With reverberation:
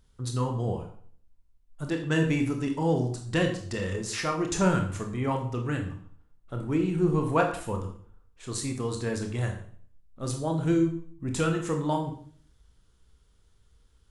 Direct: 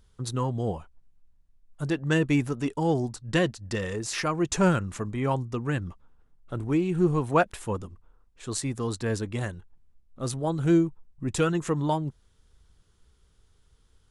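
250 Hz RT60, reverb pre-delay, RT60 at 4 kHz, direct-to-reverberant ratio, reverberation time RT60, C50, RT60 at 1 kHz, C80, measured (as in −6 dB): 0.60 s, 21 ms, 0.45 s, 3.0 dB, 0.50 s, 8.0 dB, 0.50 s, 11.5 dB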